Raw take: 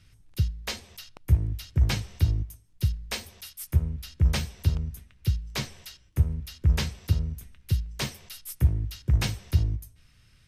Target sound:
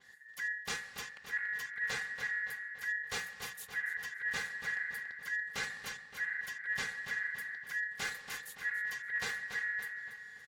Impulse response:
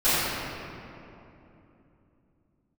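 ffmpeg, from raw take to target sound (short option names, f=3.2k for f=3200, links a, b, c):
-filter_complex "[0:a]bandreject=f=88.35:t=h:w=4,bandreject=f=176.7:t=h:w=4,bandreject=f=265.05:t=h:w=4,bandreject=f=353.4:t=h:w=4,bandreject=f=441.75:t=h:w=4,bandreject=f=530.1:t=h:w=4,bandreject=f=618.45:t=h:w=4,bandreject=f=706.8:t=h:w=4,bandreject=f=795.15:t=h:w=4,bandreject=f=883.5:t=h:w=4,bandreject=f=971.85:t=h:w=4,afreqshift=44,aecho=1:1:3.1:0.82,areverse,acompressor=threshold=-32dB:ratio=6,areverse,aeval=exprs='val(0)*sin(2*PI*1800*n/s)':c=same,asplit=2[a][b];[b]adelay=284,lowpass=f=4.9k:p=1,volume=-7dB,asplit=2[c][d];[d]adelay=284,lowpass=f=4.9k:p=1,volume=0.49,asplit=2[e][f];[f]adelay=284,lowpass=f=4.9k:p=1,volume=0.49,asplit=2[g][h];[h]adelay=284,lowpass=f=4.9k:p=1,volume=0.49,asplit=2[i][j];[j]adelay=284,lowpass=f=4.9k:p=1,volume=0.49,asplit=2[k][l];[l]adelay=284,lowpass=f=4.9k:p=1,volume=0.49[m];[c][e][g][i][k][m]amix=inputs=6:normalize=0[n];[a][n]amix=inputs=2:normalize=0,adynamicequalizer=threshold=0.00178:dfrequency=5800:dqfactor=0.7:tfrequency=5800:tqfactor=0.7:attack=5:release=100:ratio=0.375:range=2.5:mode=cutabove:tftype=highshelf"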